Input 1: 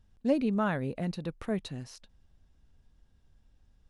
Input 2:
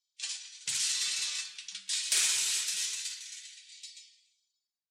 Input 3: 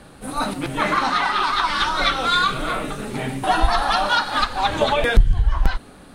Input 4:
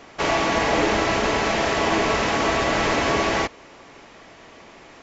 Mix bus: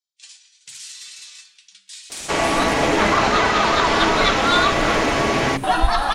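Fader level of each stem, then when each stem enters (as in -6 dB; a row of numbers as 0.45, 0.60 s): off, -6.0 dB, 0.0 dB, +1.5 dB; off, 0.00 s, 2.20 s, 2.10 s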